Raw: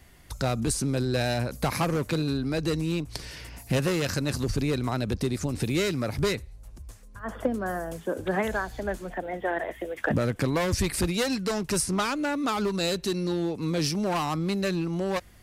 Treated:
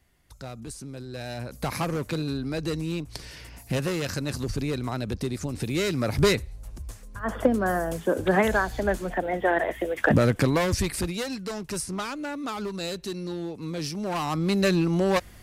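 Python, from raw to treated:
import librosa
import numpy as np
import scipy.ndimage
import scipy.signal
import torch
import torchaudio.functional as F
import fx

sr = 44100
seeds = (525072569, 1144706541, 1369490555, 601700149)

y = fx.gain(x, sr, db=fx.line((1.07, -12.0), (1.71, -2.0), (5.68, -2.0), (6.24, 5.5), (10.31, 5.5), (11.27, -5.0), (13.92, -5.0), (14.64, 5.5)))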